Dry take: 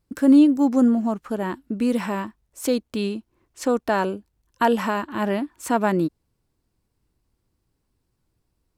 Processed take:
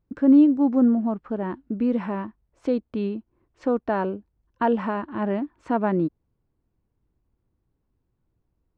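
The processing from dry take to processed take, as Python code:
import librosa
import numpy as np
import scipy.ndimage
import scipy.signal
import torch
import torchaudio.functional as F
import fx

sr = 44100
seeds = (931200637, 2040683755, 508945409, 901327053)

y = fx.spacing_loss(x, sr, db_at_10k=39)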